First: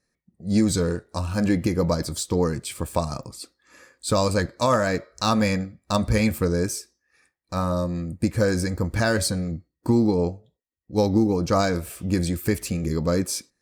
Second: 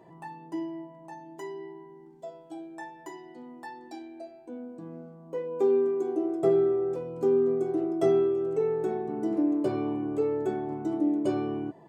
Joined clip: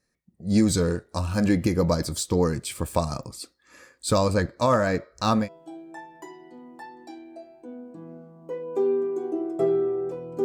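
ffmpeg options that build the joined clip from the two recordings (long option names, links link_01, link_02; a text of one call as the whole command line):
ffmpeg -i cue0.wav -i cue1.wav -filter_complex "[0:a]asettb=1/sr,asplit=3[link_01][link_02][link_03];[link_01]atrim=end=4.184[link_04];[link_02]atrim=start=4.18:end=5.49,asetpts=PTS-STARTPTS,afade=type=in:duration=0.004:curve=qsin,afade=type=out:start_time=1.306:duration=0.004:curve=qsin,equalizer=frequency=12000:width_type=o:width=2.8:gain=-7[link_05];[link_03]atrim=start=5.486[link_06];[link_04][link_05]acrossfade=duration=0.004:curve1=hsin:curve2=qsin[link_07];[link_07][link_06]acrossfade=duration=0.004:curve1=qsin:curve2=hsin,apad=whole_dur=10.44,atrim=end=10.44,atrim=end=5.49,asetpts=PTS-STARTPTS[link_08];[1:a]atrim=start=2.21:end=7.28,asetpts=PTS-STARTPTS[link_09];[link_08][link_09]acrossfade=duration=0.12:curve1=tri:curve2=tri" out.wav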